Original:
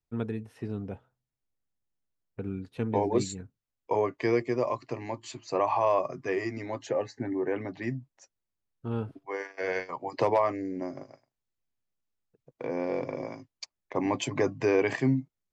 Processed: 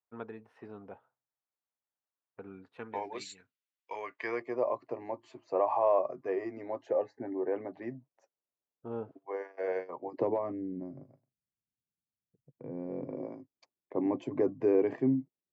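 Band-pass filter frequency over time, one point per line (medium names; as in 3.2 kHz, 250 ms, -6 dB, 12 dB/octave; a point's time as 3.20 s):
band-pass filter, Q 1.2
2.68 s 990 Hz
3.22 s 2.6 kHz
4.01 s 2.6 kHz
4.67 s 580 Hz
9.69 s 580 Hz
10.87 s 150 Hz
12.84 s 150 Hz
13.26 s 340 Hz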